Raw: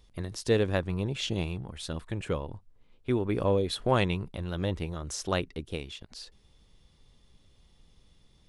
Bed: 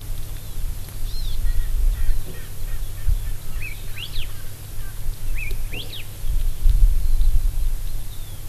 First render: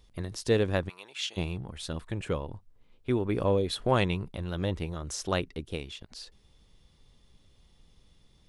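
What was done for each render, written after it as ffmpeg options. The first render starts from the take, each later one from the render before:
-filter_complex "[0:a]asplit=3[a][b][c];[a]afade=t=out:st=0.88:d=0.02[d];[b]highpass=1.2k,afade=t=in:st=0.88:d=0.02,afade=t=out:st=1.36:d=0.02[e];[c]afade=t=in:st=1.36:d=0.02[f];[d][e][f]amix=inputs=3:normalize=0"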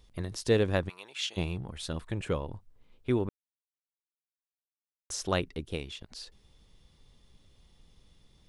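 -filter_complex "[0:a]asplit=3[a][b][c];[a]atrim=end=3.29,asetpts=PTS-STARTPTS,afade=t=out:st=3.286:d=0.004:c=hsin[d];[b]atrim=start=3.29:end=5.1,asetpts=PTS-STARTPTS,volume=0[e];[c]atrim=start=5.1,asetpts=PTS-STARTPTS,afade=t=in:d=0.004:c=hsin[f];[d][e][f]concat=n=3:v=0:a=1"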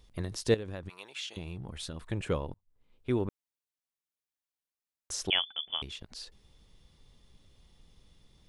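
-filter_complex "[0:a]asettb=1/sr,asplit=3[a][b][c];[a]atrim=end=0.544[d];[b]atrim=start=0.54:end=2.01,asetpts=PTS-STARTPTS,afade=t=in:d=0.004:c=qsin,afade=t=out:st=1.466:d=0.004:c=qsin,acompressor=threshold=-35dB:ratio=6:attack=3.2:release=140:knee=1:detection=peak[e];[c]atrim=start=2.006[f];[d][e]acrossfade=d=0.004:c1=hsin:c2=qsin[g];[g][f]acrossfade=d=0.004:c1=qsin:c2=hsin,asettb=1/sr,asplit=3[h][i][j];[h]atrim=end=5.304[k];[i]atrim=start=5.3:end=5.82,asetpts=PTS-STARTPTS,afade=t=in:d=0.004:c=qsin,afade=t=out:st=0.516:d=0.004:c=qsin,lowpass=f=3k:t=q:w=0.5098,lowpass=f=3k:t=q:w=0.6013,lowpass=f=3k:t=q:w=0.9,lowpass=f=3k:t=q:w=2.563,afreqshift=-3500[l];[j]atrim=start=5.816[m];[k][l]acrossfade=d=0.004:c1=hsin:c2=qsin[n];[n][m]acrossfade=d=0.004:c1=qsin:c2=hsin,asplit=2[o][p];[o]atrim=end=2.54,asetpts=PTS-STARTPTS,afade=t=out:st=2.536:d=0.004:c=hsin[q];[p]atrim=start=2.54,asetpts=PTS-STARTPTS,afade=t=in:d=0.73[r];[q][r]concat=n=2:v=0:a=1"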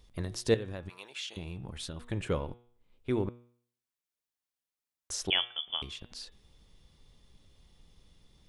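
-af "bandreject=f=120.3:t=h:w=4,bandreject=f=240.6:t=h:w=4,bandreject=f=360.9:t=h:w=4,bandreject=f=481.2:t=h:w=4,bandreject=f=601.5:t=h:w=4,bandreject=f=721.8:t=h:w=4,bandreject=f=842.1:t=h:w=4,bandreject=f=962.4:t=h:w=4,bandreject=f=1.0827k:t=h:w=4,bandreject=f=1.203k:t=h:w=4,bandreject=f=1.3233k:t=h:w=4,bandreject=f=1.4436k:t=h:w=4,bandreject=f=1.5639k:t=h:w=4,bandreject=f=1.6842k:t=h:w=4,bandreject=f=1.8045k:t=h:w=4,bandreject=f=1.9248k:t=h:w=4,bandreject=f=2.0451k:t=h:w=4,bandreject=f=2.1654k:t=h:w=4,bandreject=f=2.2857k:t=h:w=4,bandreject=f=2.406k:t=h:w=4,bandreject=f=2.5263k:t=h:w=4,bandreject=f=2.6466k:t=h:w=4,bandreject=f=2.7669k:t=h:w=4,bandreject=f=2.8872k:t=h:w=4,bandreject=f=3.0075k:t=h:w=4,bandreject=f=3.1278k:t=h:w=4,bandreject=f=3.2481k:t=h:w=4,bandreject=f=3.3684k:t=h:w=4,bandreject=f=3.4887k:t=h:w=4,bandreject=f=3.609k:t=h:w=4,bandreject=f=3.7293k:t=h:w=4,bandreject=f=3.8496k:t=h:w=4"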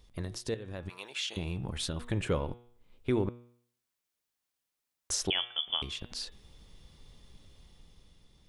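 -af "alimiter=limit=-24dB:level=0:latency=1:release=338,dynaudnorm=f=220:g=9:m=5.5dB"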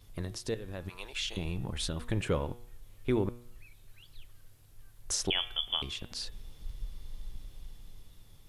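-filter_complex "[1:a]volume=-25dB[a];[0:a][a]amix=inputs=2:normalize=0"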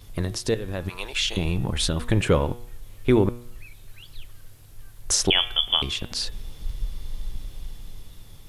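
-af "volume=10.5dB"

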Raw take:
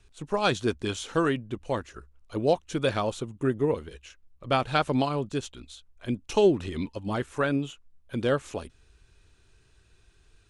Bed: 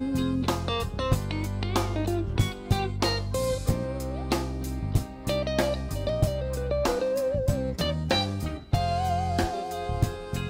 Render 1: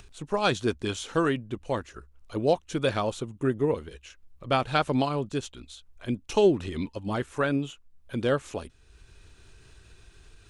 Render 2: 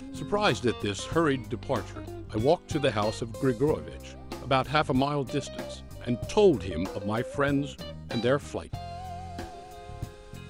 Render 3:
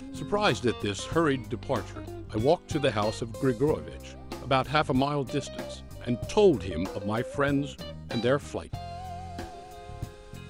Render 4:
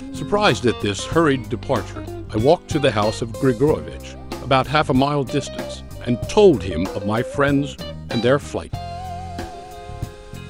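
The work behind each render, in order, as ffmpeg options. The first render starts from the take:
-af "acompressor=mode=upward:threshold=-42dB:ratio=2.5"
-filter_complex "[1:a]volume=-12.5dB[a];[0:a][a]amix=inputs=2:normalize=0"
-af anull
-af "volume=8.5dB,alimiter=limit=-2dB:level=0:latency=1"

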